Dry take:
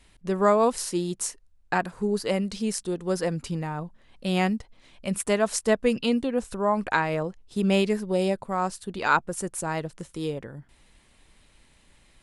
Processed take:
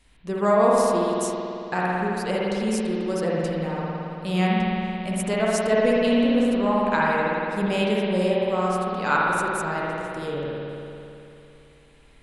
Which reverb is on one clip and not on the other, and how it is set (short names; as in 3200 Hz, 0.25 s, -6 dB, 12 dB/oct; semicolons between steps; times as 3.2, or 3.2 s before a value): spring tank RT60 2.9 s, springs 55 ms, chirp 30 ms, DRR -5.5 dB; gain -3 dB